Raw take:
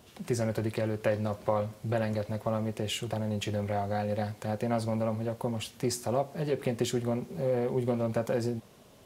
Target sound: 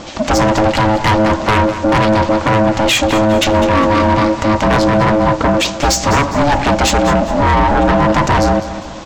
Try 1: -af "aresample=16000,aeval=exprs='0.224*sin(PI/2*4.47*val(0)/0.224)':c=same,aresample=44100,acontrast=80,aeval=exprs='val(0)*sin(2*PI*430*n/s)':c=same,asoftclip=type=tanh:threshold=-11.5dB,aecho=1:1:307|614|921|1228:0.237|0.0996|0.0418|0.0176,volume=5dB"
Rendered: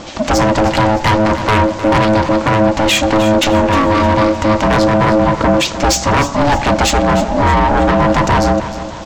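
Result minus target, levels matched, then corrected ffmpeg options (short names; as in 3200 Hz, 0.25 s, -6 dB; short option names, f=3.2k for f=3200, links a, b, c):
echo 0.104 s late
-af "aresample=16000,aeval=exprs='0.224*sin(PI/2*4.47*val(0)/0.224)':c=same,aresample=44100,acontrast=80,aeval=exprs='val(0)*sin(2*PI*430*n/s)':c=same,asoftclip=type=tanh:threshold=-11.5dB,aecho=1:1:203|406|609|812:0.237|0.0996|0.0418|0.0176,volume=5dB"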